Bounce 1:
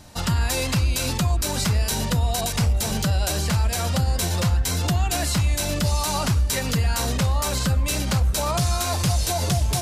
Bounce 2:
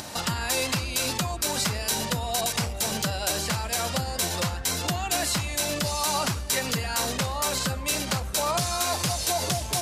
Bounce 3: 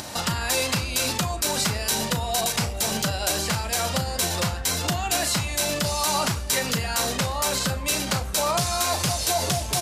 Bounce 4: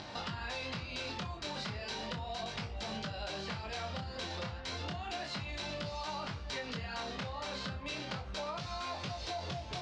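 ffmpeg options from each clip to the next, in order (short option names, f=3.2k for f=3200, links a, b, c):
-af "acompressor=mode=upward:threshold=-24dB:ratio=2.5,highpass=f=330:p=1"
-filter_complex "[0:a]asplit=2[a][b];[b]adelay=36,volume=-11.5dB[c];[a][c]amix=inputs=2:normalize=0,volume=2dB"
-af "flanger=delay=19:depth=7.8:speed=0.34,lowpass=f=4.5k:w=0.5412,lowpass=f=4.5k:w=1.3066,acompressor=threshold=-31dB:ratio=6,volume=-5.5dB"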